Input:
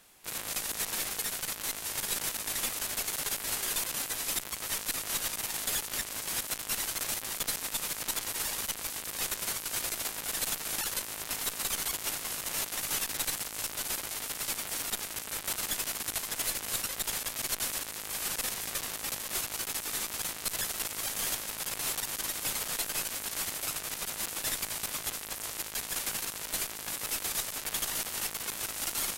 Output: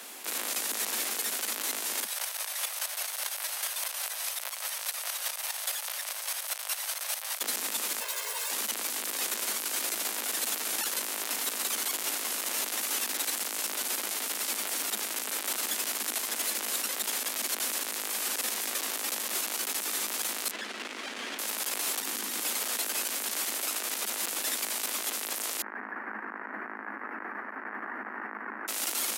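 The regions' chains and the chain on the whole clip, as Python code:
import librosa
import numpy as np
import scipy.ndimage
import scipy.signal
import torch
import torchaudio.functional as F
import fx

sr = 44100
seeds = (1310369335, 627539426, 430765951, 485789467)

y = fx.chain(x, sr, fx.steep_highpass(hz=540.0, slope=48),
    fx.notch(hz=7200.0, q=11.0),
    fx.volume_shaper(bpm=147, per_beat=2, depth_db=-10, release_ms=156.0, shape='slow start'), at=(2.04, 7.41))
y = fx.chain(y, sr, fx.lower_of_two(delay_ms=1.9),
    fx.highpass(hz=450.0, slope=24),
    fx.ensemble(), at=(8.0, 8.5))
y = fx.chain(y, sr, fx.lowpass(hz=2400.0, slope=12),
    fx.clip_hard(threshold_db=-32.5),
    fx.peak_eq(hz=770.0, db=-8.0, octaves=2.3), at=(20.51, 21.39))
y = fx.chain(y, sr, fx.bass_treble(bass_db=12, treble_db=-1),
    fx.over_compress(threshold_db=-38.0, ratio=-1.0),
    fx.notch(hz=620.0, q=7.4), at=(21.99, 22.4))
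y = fx.chain(y, sr, fx.ellip_lowpass(hz=1800.0, order=4, stop_db=50),
    fx.peak_eq(hz=540.0, db=-11.0, octaves=1.1), at=(25.62, 28.68))
y = scipy.signal.sosfilt(scipy.signal.butter(16, 210.0, 'highpass', fs=sr, output='sos'), y)
y = fx.env_flatten(y, sr, amount_pct=50)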